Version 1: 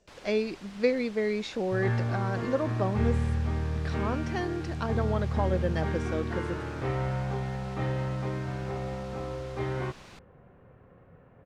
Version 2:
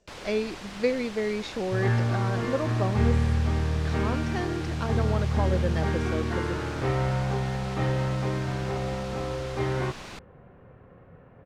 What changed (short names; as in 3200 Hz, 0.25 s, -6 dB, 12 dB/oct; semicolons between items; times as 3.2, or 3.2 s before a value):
first sound +9.0 dB; second sound +4.0 dB